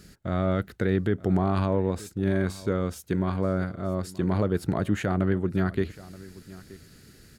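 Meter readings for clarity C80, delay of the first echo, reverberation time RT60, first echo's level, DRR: none, 0.927 s, none, -19.5 dB, none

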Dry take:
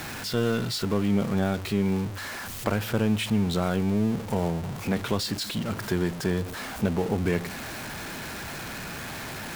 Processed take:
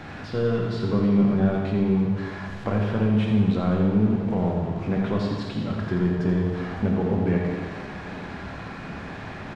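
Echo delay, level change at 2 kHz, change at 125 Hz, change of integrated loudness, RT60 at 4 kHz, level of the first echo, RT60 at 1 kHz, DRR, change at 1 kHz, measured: 85 ms, -2.0 dB, +4.5 dB, +4.0 dB, 1.7 s, -7.0 dB, 1.9 s, -1.0 dB, +0.5 dB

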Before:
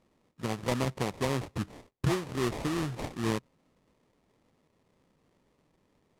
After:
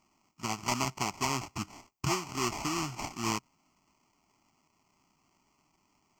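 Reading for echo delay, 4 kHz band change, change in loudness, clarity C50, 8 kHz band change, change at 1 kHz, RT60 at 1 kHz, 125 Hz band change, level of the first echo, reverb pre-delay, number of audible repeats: none, +4.0 dB, -1.0 dB, none, +8.0 dB, +4.0 dB, none, -6.0 dB, none, none, none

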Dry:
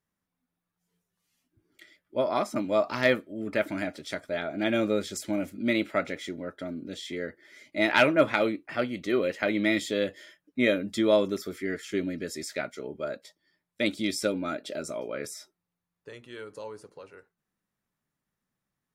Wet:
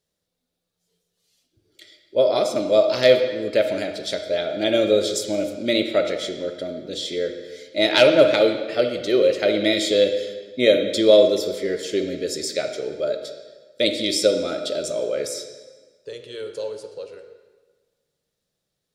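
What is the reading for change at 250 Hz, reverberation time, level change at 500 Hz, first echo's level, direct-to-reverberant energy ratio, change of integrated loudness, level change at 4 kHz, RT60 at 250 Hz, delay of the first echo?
+3.5 dB, 1.4 s, +10.5 dB, none, 6.5 dB, +8.0 dB, +12.0 dB, 1.4 s, none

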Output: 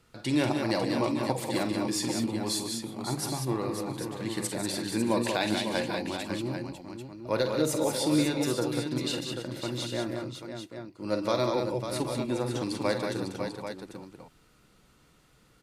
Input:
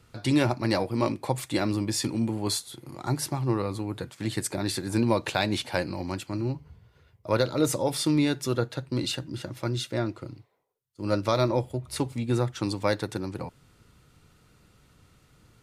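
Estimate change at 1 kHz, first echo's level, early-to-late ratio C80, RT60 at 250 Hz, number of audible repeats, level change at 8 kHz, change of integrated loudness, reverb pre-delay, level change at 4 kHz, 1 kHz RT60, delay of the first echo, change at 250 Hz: -1.5 dB, -11.0 dB, none, none, 5, -0.5 dB, -2.0 dB, none, -0.5 dB, none, 47 ms, -1.5 dB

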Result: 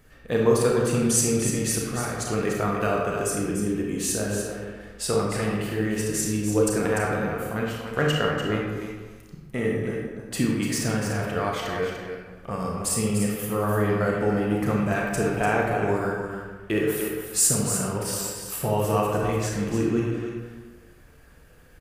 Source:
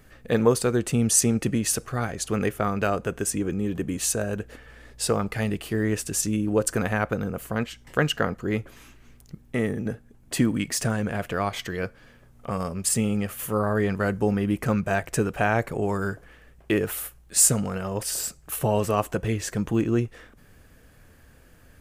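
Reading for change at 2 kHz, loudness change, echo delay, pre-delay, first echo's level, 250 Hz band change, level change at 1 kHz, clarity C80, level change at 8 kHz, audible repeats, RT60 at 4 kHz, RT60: +1.0 dB, +0.5 dB, 0.295 s, 27 ms, -7.5 dB, 0.0 dB, +1.5 dB, 1.5 dB, -1.0 dB, 1, 0.90 s, 1.3 s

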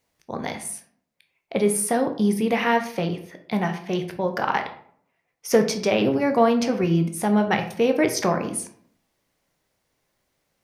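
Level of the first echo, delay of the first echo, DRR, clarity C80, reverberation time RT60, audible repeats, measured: none, none, 5.0 dB, 14.0 dB, 0.60 s, none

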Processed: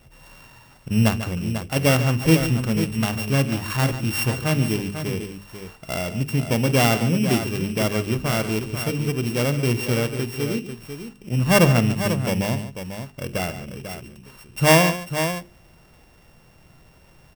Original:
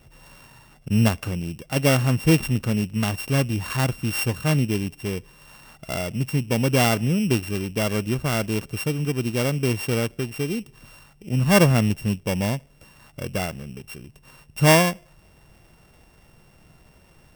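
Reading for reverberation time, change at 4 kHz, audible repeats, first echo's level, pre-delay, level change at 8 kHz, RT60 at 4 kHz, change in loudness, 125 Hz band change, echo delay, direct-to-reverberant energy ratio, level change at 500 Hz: none, +2.0 dB, 3, -17.5 dB, none, +1.0 dB, none, +1.0 dB, +1.0 dB, 50 ms, none, +1.5 dB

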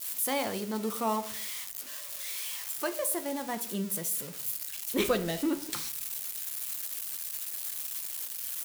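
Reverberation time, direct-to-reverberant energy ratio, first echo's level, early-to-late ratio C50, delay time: 0.60 s, 7.5 dB, none, 15.5 dB, none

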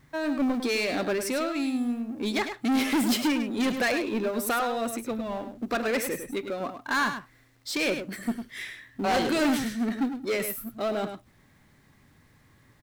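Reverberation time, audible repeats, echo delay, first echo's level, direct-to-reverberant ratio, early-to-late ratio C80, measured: none, 1, 0.103 s, -8.5 dB, none, none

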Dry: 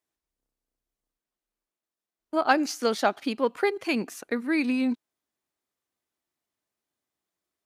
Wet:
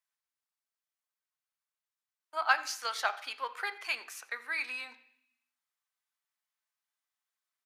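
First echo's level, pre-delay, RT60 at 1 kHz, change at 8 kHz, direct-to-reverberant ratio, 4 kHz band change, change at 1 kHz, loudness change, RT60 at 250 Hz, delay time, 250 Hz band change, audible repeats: -21.5 dB, 3 ms, 0.65 s, -3.5 dB, 8.5 dB, -3.0 dB, -6.0 dB, -7.5 dB, 0.95 s, 88 ms, -36.5 dB, 1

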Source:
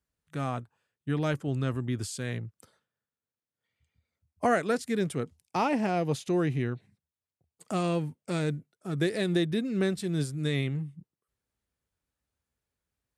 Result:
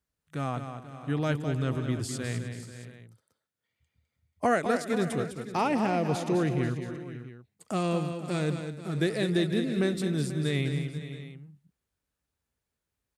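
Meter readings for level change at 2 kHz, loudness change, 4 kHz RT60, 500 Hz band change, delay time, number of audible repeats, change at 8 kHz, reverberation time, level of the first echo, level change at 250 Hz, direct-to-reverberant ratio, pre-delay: +1.0 dB, +0.5 dB, none, +1.0 dB, 0.206 s, 5, +1.0 dB, none, -8.0 dB, +1.0 dB, none, none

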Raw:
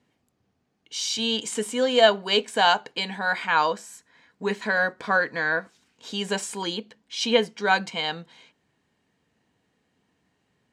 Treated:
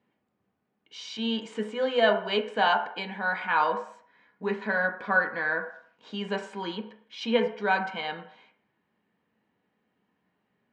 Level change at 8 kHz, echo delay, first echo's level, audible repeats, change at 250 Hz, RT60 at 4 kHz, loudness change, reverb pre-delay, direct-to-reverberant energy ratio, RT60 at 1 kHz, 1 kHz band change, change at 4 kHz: under -20 dB, none, none, none, -2.0 dB, 0.60 s, -4.0 dB, 3 ms, 4.0 dB, 0.65 s, -3.0 dB, -9.0 dB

